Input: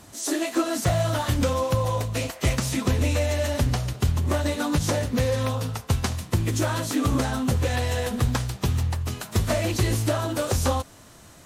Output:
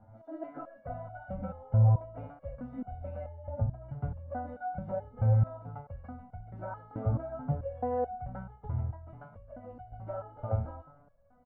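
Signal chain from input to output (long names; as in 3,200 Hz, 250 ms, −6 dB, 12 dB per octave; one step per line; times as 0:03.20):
0:03.28–0:03.81: expanding power law on the bin magnitudes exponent 1.5
low-pass filter 1,100 Hz 24 dB per octave
comb filter 1.4 ms, depth 83%
hum removal 58.79 Hz, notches 28
0:09.09–0:09.92: downward compressor 5 to 1, threshold −25 dBFS, peak gain reduction 11 dB
step-sequenced resonator 4.6 Hz 110–730 Hz
level +2 dB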